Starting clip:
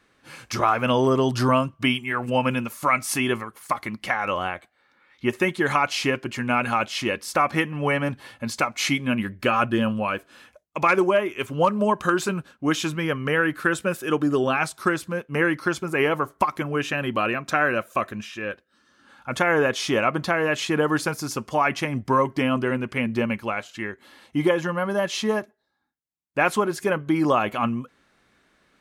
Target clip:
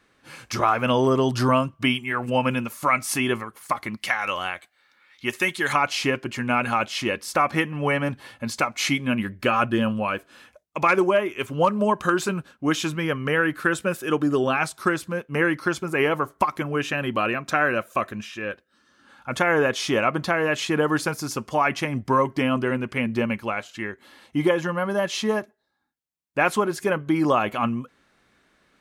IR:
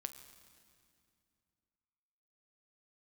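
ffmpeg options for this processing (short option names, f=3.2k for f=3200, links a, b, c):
-filter_complex "[0:a]asettb=1/sr,asplit=3[a][b][c];[a]atrim=end=3.974[d];[b]atrim=start=3.97:end=5.73,asetpts=PTS-STARTPTS,afade=t=in:d=0.004:c=qsin,afade=t=out:st=1.756:d=0.004:c=qsin,tiltshelf=f=1.4k:g=-7[e];[c]atrim=start=5.726[f];[d][e]acrossfade=d=0.004:c1=hsin:c2=qsin[g];[g][f]acrossfade=d=0.004:c1=qsin:c2=hsin"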